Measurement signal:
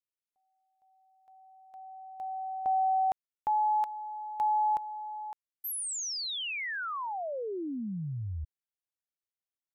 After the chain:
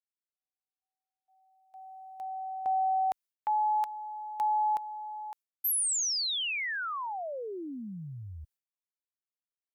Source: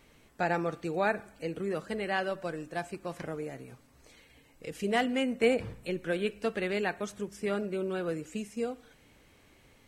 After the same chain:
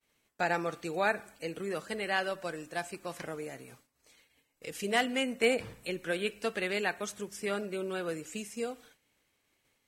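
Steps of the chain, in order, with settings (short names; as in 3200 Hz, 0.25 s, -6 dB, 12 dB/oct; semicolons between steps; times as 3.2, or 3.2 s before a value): expander -50 dBFS; tilt +2 dB/oct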